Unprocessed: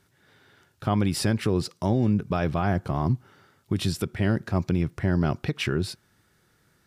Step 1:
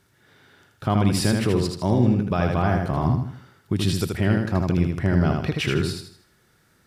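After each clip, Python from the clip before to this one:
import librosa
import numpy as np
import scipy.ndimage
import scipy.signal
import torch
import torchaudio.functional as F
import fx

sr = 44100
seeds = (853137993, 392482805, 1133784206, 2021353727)

y = fx.echo_feedback(x, sr, ms=79, feedback_pct=38, wet_db=-4)
y = y * librosa.db_to_amplitude(2.0)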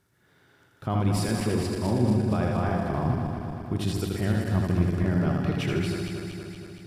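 y = fx.reverse_delay_fb(x, sr, ms=117, feedback_pct=80, wet_db=-5.5)
y = fx.peak_eq(y, sr, hz=3600.0, db=-3.5, octaves=2.2)
y = y * librosa.db_to_amplitude(-6.0)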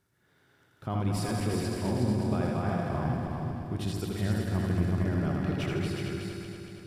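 y = x + 10.0 ** (-4.5 / 20.0) * np.pad(x, (int(368 * sr / 1000.0), 0))[:len(x)]
y = y * librosa.db_to_amplitude(-5.0)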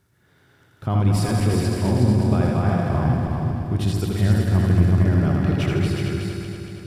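y = fx.peak_eq(x, sr, hz=81.0, db=6.0, octaves=1.8)
y = y * librosa.db_to_amplitude(7.0)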